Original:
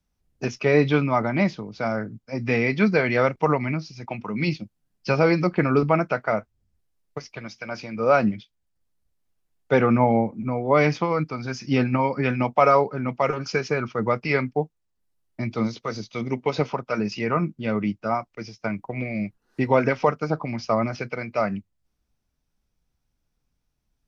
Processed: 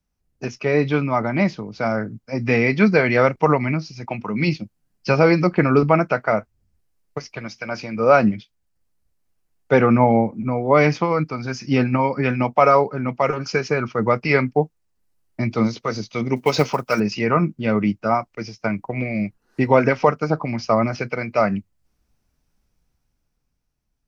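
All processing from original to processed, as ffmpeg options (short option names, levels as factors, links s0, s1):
-filter_complex "[0:a]asettb=1/sr,asplit=3[s0][s1][s2];[s0]atrim=end=16.364[s3];[s1]atrim=start=16.36:end=17,asetpts=PTS-STARTPTS,afade=t=in:d=0.004:c=qsin,afade=t=out:st=0.636:d=0.004:c=qsin,aemphasis=mode=production:type=75kf,acrusher=bits=7:mode=log:mix=0:aa=0.000001[s4];[s2]atrim=start=16.996[s5];[s3][s4]acrossfade=d=0.004:c1=hsin:c2=qsin[s6];[s6][s5]acrossfade=d=0.004:c1=qsin:c2=hsin,equalizer=f=3500:t=o:w=0.33:g=-4,dynaudnorm=f=130:g=21:m=3.76,volume=0.891"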